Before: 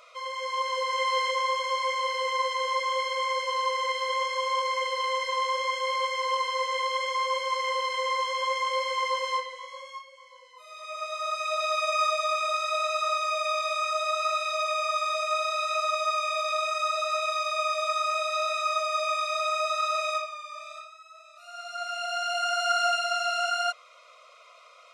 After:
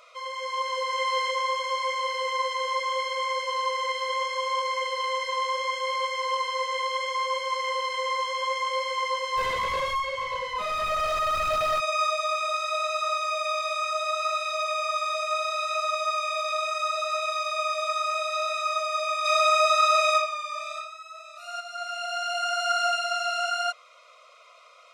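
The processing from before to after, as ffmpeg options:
-filter_complex "[0:a]asplit=3[a][b][c];[a]afade=t=out:st=9.36:d=0.02[d];[b]asplit=2[e][f];[f]highpass=f=720:p=1,volume=35dB,asoftclip=type=tanh:threshold=-17.5dB[g];[e][g]amix=inputs=2:normalize=0,lowpass=f=1.5k:p=1,volume=-6dB,afade=t=in:st=9.36:d=0.02,afade=t=out:st=11.79:d=0.02[h];[c]afade=t=in:st=11.79:d=0.02[i];[d][h][i]amix=inputs=3:normalize=0,asplit=3[j][k][l];[j]afade=t=out:st=19.24:d=0.02[m];[k]acontrast=85,afade=t=in:st=19.24:d=0.02,afade=t=out:st=21.59:d=0.02[n];[l]afade=t=in:st=21.59:d=0.02[o];[m][n][o]amix=inputs=3:normalize=0"

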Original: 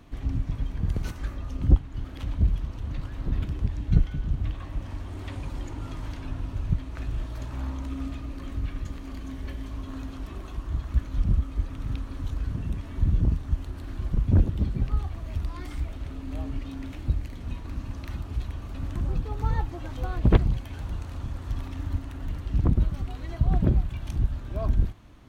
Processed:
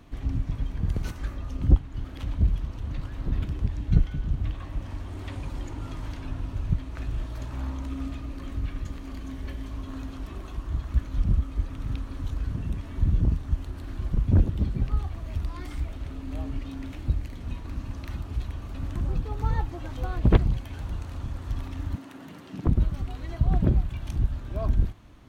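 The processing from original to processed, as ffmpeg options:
-filter_complex "[0:a]asettb=1/sr,asplit=3[a][b][c];[a]atrim=end=21.954[d];[b]atrim=start=21.95:end=22.67,asetpts=PTS-STARTPTS,afade=t=in:d=0.004:c=qsin,afade=t=out:st=0.716:d=0.004:c=qsin,highpass=f=170:w=0.5412,highpass=f=170:w=1.3066[e];[c]atrim=start=22.666[f];[d][e]acrossfade=d=0.004:c1=hsin:c2=qsin[g];[g][f]acrossfade=d=0.004:c1=qsin:c2=hsin"

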